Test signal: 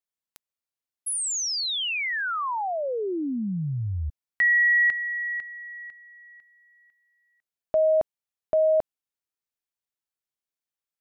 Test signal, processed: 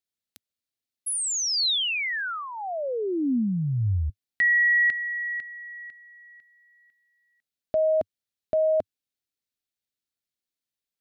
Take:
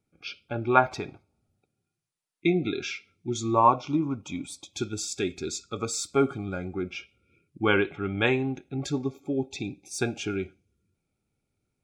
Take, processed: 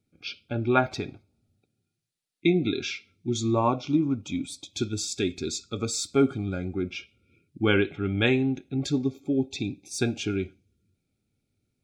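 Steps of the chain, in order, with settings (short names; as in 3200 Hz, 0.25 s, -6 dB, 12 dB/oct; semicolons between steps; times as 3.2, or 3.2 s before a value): fifteen-band EQ 100 Hz +5 dB, 250 Hz +5 dB, 1000 Hz -9 dB, 4000 Hz +5 dB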